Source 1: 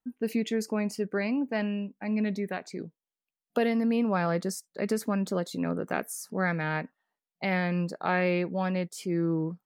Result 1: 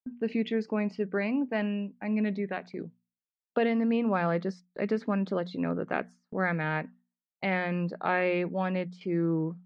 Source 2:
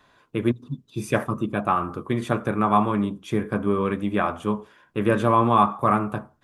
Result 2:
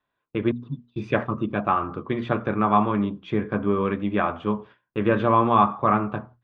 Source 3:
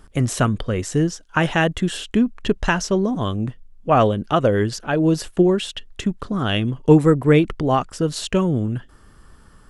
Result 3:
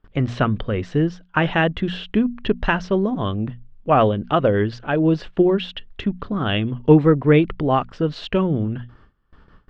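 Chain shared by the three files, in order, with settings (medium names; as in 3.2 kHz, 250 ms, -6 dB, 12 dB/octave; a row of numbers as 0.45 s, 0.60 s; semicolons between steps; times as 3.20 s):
low-pass 3.7 kHz 24 dB/octave; gate with hold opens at -38 dBFS; hum notches 60/120/180/240 Hz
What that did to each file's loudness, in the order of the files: -0.5 LU, 0.0 LU, -0.5 LU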